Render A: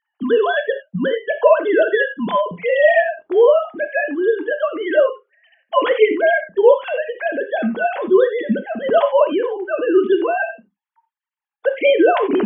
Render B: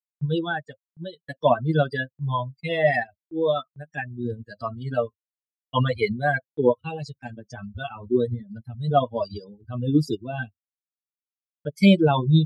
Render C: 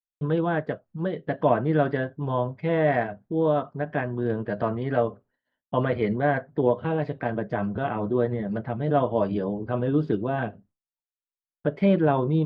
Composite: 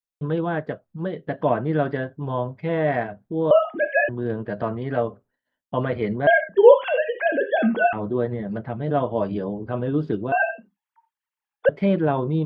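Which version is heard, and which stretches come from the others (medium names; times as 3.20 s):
C
3.51–4.09 s: from A
6.27–7.93 s: from A
10.32–11.69 s: from A
not used: B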